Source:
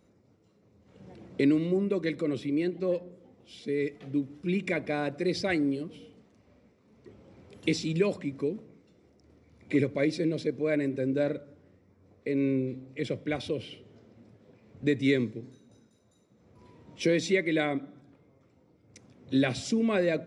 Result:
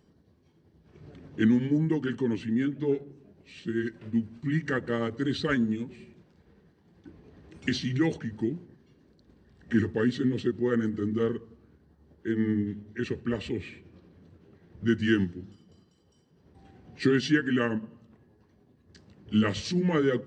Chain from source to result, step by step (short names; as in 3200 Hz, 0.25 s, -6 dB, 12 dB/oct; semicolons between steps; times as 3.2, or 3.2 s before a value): delay-line pitch shifter -4 st; gain +2.5 dB